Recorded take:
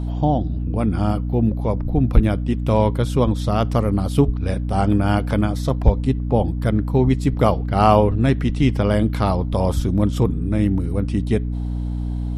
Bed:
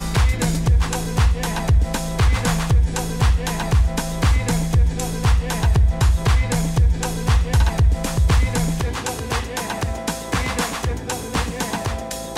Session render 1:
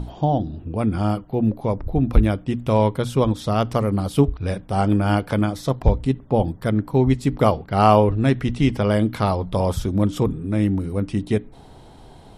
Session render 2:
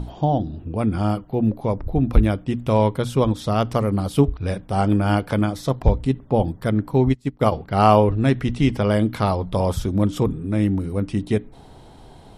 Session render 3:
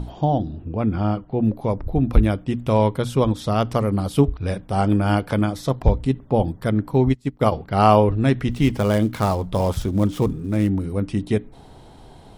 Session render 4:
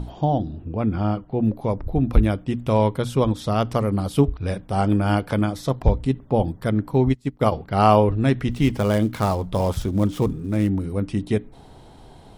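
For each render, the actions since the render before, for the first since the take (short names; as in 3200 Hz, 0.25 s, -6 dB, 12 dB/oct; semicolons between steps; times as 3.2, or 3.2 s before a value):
notches 60/120/180/240/300 Hz
7.09–7.52 upward expander 2.5:1, over -27 dBFS
0.53–1.4 air absorption 150 m; 8.51–10.69 switching dead time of 0.077 ms
gain -1 dB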